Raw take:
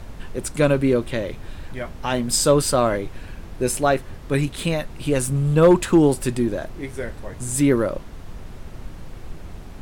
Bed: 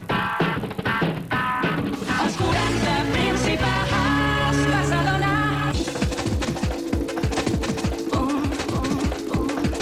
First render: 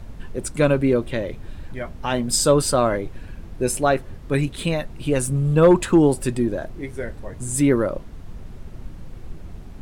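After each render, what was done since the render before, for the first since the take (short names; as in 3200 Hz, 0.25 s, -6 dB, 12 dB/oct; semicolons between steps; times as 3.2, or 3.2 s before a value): denoiser 6 dB, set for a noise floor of -38 dBFS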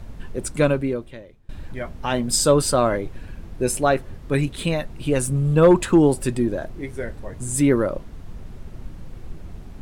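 0.62–1.49 fade out quadratic, to -22 dB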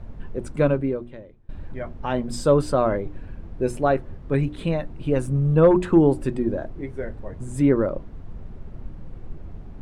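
LPF 1100 Hz 6 dB/oct; notches 60/120/180/240/300/360 Hz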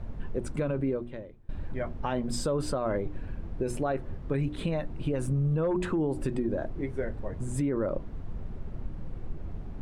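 limiter -17.5 dBFS, peak gain reduction 12 dB; compressor 2:1, threshold -27 dBFS, peak gain reduction 4 dB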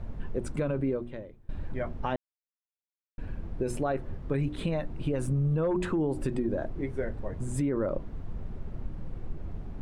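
2.16–3.18 mute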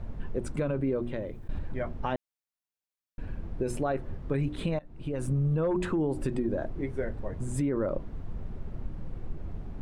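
0.87–1.59 fast leveller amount 50%; 4.79–5.31 fade in, from -23.5 dB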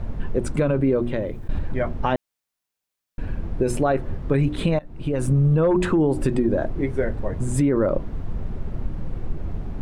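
gain +9 dB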